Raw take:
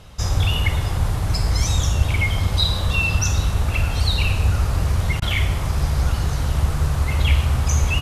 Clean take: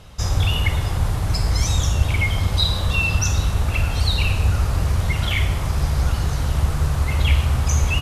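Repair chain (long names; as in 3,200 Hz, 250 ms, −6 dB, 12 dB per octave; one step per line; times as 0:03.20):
repair the gap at 0:05.20, 18 ms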